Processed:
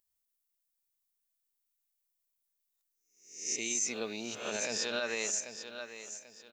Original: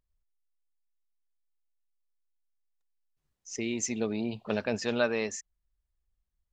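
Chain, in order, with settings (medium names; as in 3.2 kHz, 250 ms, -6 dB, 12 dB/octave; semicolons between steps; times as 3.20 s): reverse spectral sustain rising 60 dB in 0.55 s; RIAA curve recording; feedback delay 789 ms, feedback 32%, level -13 dB; peak limiter -18.5 dBFS, peak gain reduction 10.5 dB; trim -4 dB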